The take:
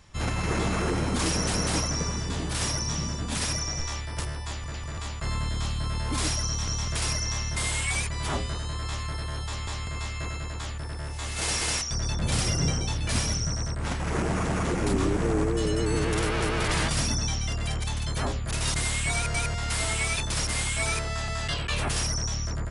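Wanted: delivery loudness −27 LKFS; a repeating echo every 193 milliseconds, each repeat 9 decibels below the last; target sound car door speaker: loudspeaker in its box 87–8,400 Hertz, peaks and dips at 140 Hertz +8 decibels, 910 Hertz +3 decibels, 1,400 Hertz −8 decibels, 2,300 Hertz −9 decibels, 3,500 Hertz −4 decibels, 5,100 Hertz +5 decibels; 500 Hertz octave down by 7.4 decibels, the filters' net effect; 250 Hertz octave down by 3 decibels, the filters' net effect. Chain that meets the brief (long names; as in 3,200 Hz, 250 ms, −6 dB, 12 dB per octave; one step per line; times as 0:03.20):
loudspeaker in its box 87–8,400 Hz, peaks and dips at 140 Hz +8 dB, 910 Hz +3 dB, 1,400 Hz −8 dB, 2,300 Hz −9 dB, 3,500 Hz −4 dB, 5,100 Hz +5 dB
parametric band 250 Hz −5.5 dB
parametric band 500 Hz −8 dB
repeating echo 193 ms, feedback 35%, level −9 dB
level +2 dB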